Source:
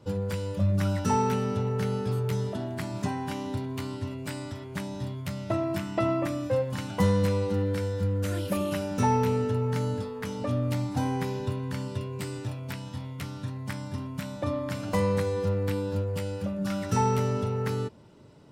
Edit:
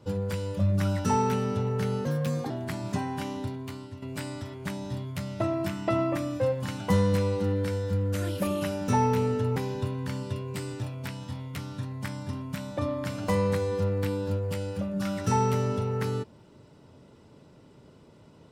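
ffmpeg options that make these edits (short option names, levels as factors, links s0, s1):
-filter_complex "[0:a]asplit=5[s0][s1][s2][s3][s4];[s0]atrim=end=2.054[s5];[s1]atrim=start=2.05:end=2.6,asetpts=PTS-STARTPTS,asetrate=53802,aresample=44100,atrim=end_sample=19881,asetpts=PTS-STARTPTS[s6];[s2]atrim=start=2.596:end=4.12,asetpts=PTS-STARTPTS,afade=t=out:st=0.774:d=0.75:silence=0.298538[s7];[s3]atrim=start=4.12:end=9.662,asetpts=PTS-STARTPTS,afade=t=in:d=0.004:c=hsin:silence=0.298538[s8];[s4]atrim=start=11.208[s9];[s5][s6]acrossfade=d=0.004:c1=hsin:c2=hsin[s10];[s7][s8]concat=n=2:v=0:a=1[s11];[s10][s11]acrossfade=d=0.004:c1=hsin:c2=hsin[s12];[s12][s9]acrossfade=d=0.004:c1=hsin:c2=hsin"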